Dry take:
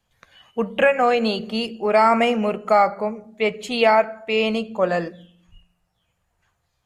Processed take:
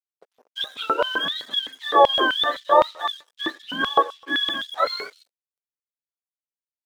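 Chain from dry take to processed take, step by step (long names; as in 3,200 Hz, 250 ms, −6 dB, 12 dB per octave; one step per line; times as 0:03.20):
frequency axis turned over on the octave scale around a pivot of 860 Hz
dead-zone distortion −46.5 dBFS
auto-filter high-pass square 3.9 Hz 500–3,400 Hz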